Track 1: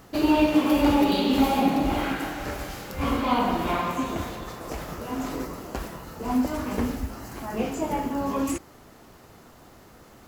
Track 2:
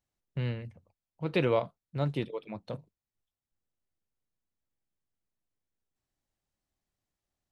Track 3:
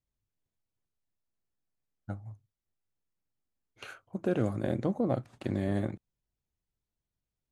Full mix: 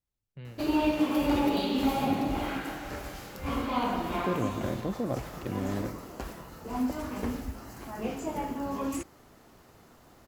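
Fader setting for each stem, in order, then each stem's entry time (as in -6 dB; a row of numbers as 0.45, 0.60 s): -6.0, -12.0, -2.5 dB; 0.45, 0.00, 0.00 s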